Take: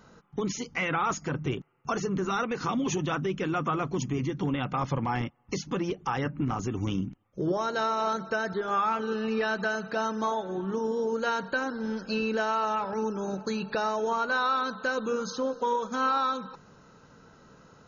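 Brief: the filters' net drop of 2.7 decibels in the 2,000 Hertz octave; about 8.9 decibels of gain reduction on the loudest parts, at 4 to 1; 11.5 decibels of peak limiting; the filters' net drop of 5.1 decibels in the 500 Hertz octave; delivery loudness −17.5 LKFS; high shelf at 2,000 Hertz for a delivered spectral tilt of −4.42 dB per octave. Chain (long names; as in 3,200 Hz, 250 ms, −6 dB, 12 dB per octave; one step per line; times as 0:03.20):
parametric band 500 Hz −6.5 dB
high-shelf EQ 2,000 Hz +8 dB
parametric band 2,000 Hz −8.5 dB
downward compressor 4 to 1, threshold −36 dBFS
level +25.5 dB
brickwall limiter −9.5 dBFS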